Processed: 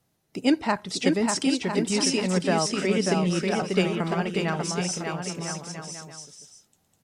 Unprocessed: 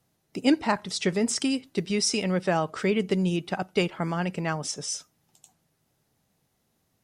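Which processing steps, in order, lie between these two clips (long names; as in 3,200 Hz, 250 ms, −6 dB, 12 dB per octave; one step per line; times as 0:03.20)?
bouncing-ball delay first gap 590 ms, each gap 0.7×, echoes 5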